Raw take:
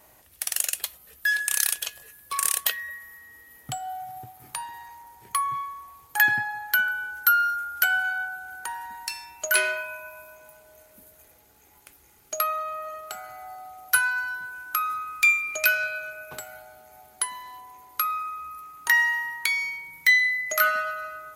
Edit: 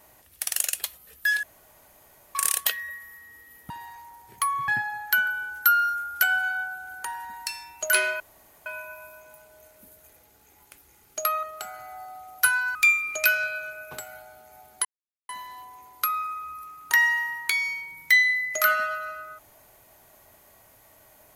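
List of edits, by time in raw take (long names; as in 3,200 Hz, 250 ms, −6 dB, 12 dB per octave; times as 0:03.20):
0:01.43–0:02.35: fill with room tone
0:03.70–0:04.63: remove
0:05.61–0:06.29: remove
0:09.81: splice in room tone 0.46 s
0:12.58–0:12.93: remove
0:14.25–0:15.15: remove
0:17.25: splice in silence 0.44 s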